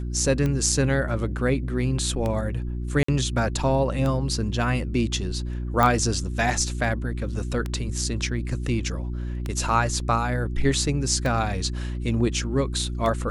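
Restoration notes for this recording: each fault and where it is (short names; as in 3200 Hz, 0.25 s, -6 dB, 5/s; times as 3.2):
hum 60 Hz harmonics 6 -29 dBFS
tick 33 1/3 rpm -15 dBFS
3.03–3.08 gap 54 ms
5.83 pop -8 dBFS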